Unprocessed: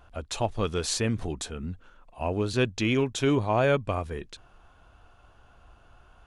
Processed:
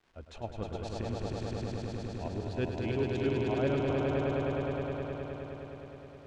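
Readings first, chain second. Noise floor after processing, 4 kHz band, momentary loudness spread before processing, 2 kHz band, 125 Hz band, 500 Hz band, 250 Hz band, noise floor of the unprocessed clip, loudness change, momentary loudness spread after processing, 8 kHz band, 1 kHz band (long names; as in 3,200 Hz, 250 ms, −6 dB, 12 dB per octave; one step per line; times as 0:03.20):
−51 dBFS, −11.5 dB, 14 LU, −8.5 dB, −3.5 dB, −3.5 dB, −4.0 dB, −57 dBFS, −6.0 dB, 13 LU, below −15 dB, −7.0 dB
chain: downward expander −43 dBFS
parametric band 1,100 Hz −5 dB 0.42 octaves
in parallel at −3 dB: output level in coarse steps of 12 dB
on the sum: shaped tremolo saw up 7.9 Hz, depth 85%
surface crackle 420 per second −40 dBFS
head-to-tape spacing loss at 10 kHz 24 dB
on a send: echo that builds up and dies away 104 ms, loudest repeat 5, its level −4 dB
on the sum: level −8.5 dB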